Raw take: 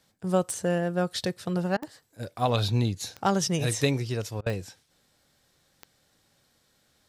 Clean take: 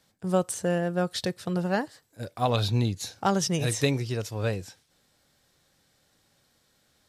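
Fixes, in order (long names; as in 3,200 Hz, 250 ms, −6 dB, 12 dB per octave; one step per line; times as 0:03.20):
click removal
repair the gap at 0:01.77/0:04.41, 51 ms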